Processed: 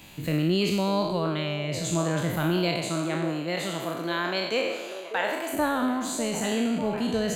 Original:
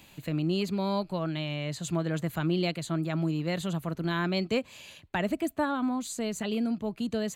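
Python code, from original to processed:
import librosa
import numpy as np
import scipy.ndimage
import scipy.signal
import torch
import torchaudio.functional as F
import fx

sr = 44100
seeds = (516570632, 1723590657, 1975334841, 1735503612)

y = fx.spec_trails(x, sr, decay_s=1.09)
y = fx.rider(y, sr, range_db=10, speed_s=2.0)
y = fx.highpass(y, sr, hz=fx.line((2.81, 150.0), (5.52, 640.0)), slope=12, at=(2.81, 5.52), fade=0.02)
y = fx.echo_stepped(y, sr, ms=596, hz=470.0, octaves=0.7, feedback_pct=70, wet_db=-7.0)
y = F.gain(torch.from_numpy(y), 1.5).numpy()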